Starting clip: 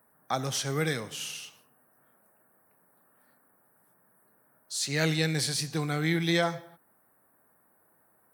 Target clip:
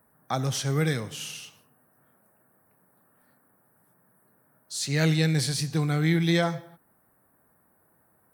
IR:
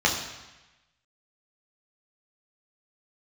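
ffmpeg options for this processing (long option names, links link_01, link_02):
-af "lowshelf=frequency=170:gain=12"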